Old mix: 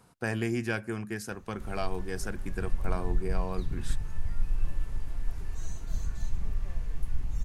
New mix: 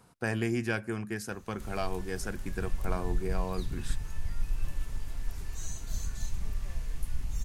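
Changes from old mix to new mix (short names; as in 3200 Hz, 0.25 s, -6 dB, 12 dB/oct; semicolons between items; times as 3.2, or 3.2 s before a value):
background: add high shelf 2700 Hz +11.5 dB; reverb: off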